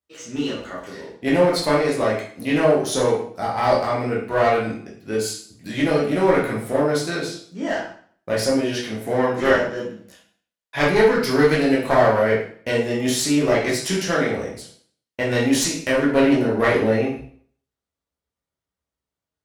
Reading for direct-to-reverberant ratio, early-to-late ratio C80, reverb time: -6.0 dB, 8.5 dB, 0.50 s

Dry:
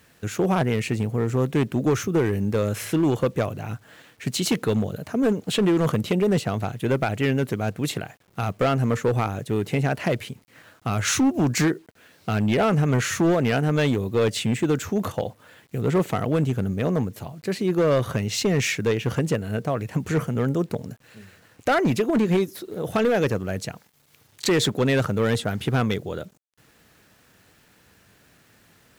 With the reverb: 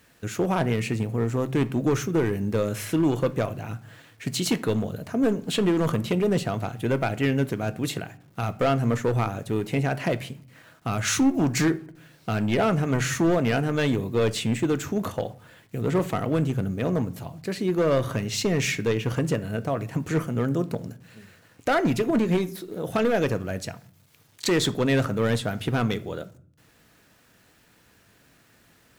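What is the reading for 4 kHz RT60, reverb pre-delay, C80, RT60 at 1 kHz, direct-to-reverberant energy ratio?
0.35 s, 3 ms, 23.5 dB, 0.50 s, 11.0 dB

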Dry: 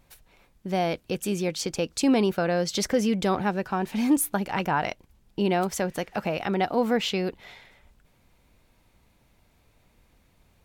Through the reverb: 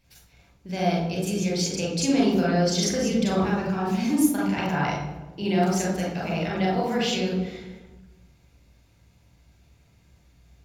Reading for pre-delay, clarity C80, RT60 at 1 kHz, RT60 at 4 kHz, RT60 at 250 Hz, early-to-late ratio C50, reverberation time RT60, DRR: 32 ms, 5.0 dB, 1.0 s, 0.80 s, 1.6 s, 1.5 dB, 1.2 s, -3.0 dB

